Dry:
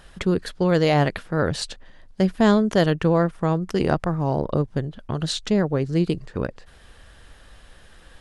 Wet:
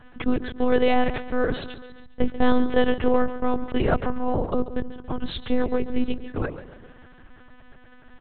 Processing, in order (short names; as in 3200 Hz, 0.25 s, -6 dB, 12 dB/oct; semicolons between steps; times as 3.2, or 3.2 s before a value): outdoor echo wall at 70 m, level -24 dB; low-pass opened by the level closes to 1900 Hz, open at -14.5 dBFS; on a send: feedback echo 0.138 s, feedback 46%, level -13.5 dB; on the sum: monotone LPC vocoder at 8 kHz 250 Hz